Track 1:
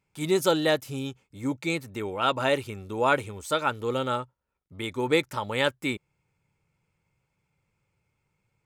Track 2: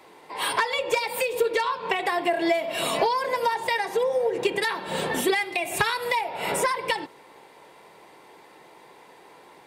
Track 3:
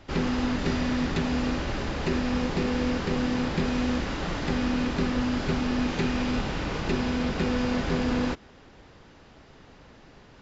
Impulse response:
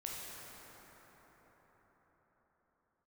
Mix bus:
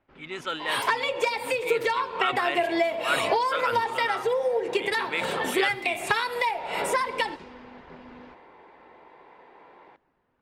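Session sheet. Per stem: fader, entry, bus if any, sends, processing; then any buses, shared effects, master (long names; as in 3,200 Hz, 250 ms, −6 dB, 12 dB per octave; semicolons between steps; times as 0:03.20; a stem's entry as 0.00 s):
−13.0 dB, 0.00 s, no send, flat-topped bell 2,000 Hz +12.5 dB; level that may fall only so fast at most 99 dB per second
0.0 dB, 0.30 s, send −24 dB, high-shelf EQ 5,200 Hz −7 dB
−18.0 dB, 0.00 s, send −11 dB, reverb reduction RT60 0.64 s; automatic ducking −15 dB, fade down 0.35 s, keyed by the first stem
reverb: on, RT60 5.5 s, pre-delay 13 ms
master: low-pass that shuts in the quiet parts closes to 1,900 Hz, open at −24.5 dBFS; low-shelf EQ 210 Hz −10 dB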